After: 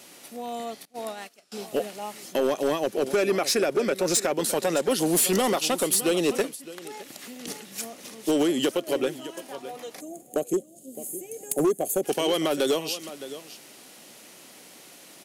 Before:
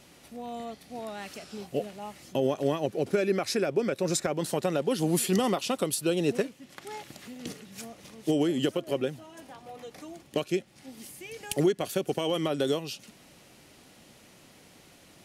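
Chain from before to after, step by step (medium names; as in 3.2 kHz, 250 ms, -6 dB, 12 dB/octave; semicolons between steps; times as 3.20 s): 10.53–10.95 s: Chebyshev band-stop 600–2900 Hz, order 4; delay 613 ms -15 dB; 0.85–1.52 s: gate -37 dBFS, range -24 dB; high-pass 250 Hz 12 dB/octave; treble shelf 6.4 kHz +8.5 dB; 6.47–7.48 s: compression 6:1, threshold -41 dBFS, peak gain reduction 8 dB; 10.00–12.03 s: time-frequency box 800–6300 Hz -18 dB; hard clipper -22.5 dBFS, distortion -14 dB; trim +5 dB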